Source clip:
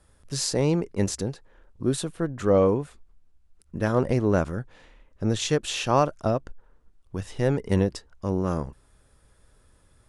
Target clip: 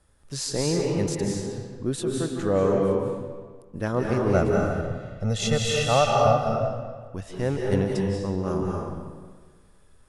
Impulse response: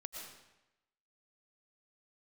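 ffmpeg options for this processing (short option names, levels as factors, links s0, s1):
-filter_complex "[0:a]asettb=1/sr,asplit=3[s0][s1][s2];[s0]atrim=end=4.344[s3];[s1]atrim=start=4.34:end=6.36,asetpts=PTS-STARTPTS,afade=t=in:d=0.004:c=qsin,afade=t=out:st=2.016:d=0.004:c=qsin,aecho=1:1:1.5:0.97,atrim=end_sample=89082[s4];[s2]atrim=start=6.356[s5];[s3][s4]acrossfade=d=0.004:c1=hsin:c2=qsin[s6];[s6][s5]acrossfade=d=0.004:c1=qsin:c2=hsin[s7];[1:a]atrim=start_sample=2205,asetrate=27783,aresample=44100[s8];[s7][s8]afir=irnorm=-1:irlink=0"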